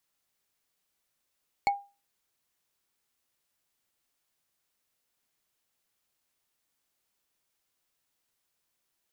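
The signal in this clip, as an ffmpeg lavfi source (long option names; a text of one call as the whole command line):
ffmpeg -f lavfi -i "aevalsrc='0.119*pow(10,-3*t/0.3)*sin(2*PI*804*t)+0.0596*pow(10,-3*t/0.089)*sin(2*PI*2216.6*t)+0.0299*pow(10,-3*t/0.04)*sin(2*PI*4344.8*t)+0.015*pow(10,-3*t/0.022)*sin(2*PI*7182.1*t)+0.0075*pow(10,-3*t/0.013)*sin(2*PI*10725.4*t)':duration=0.45:sample_rate=44100" out.wav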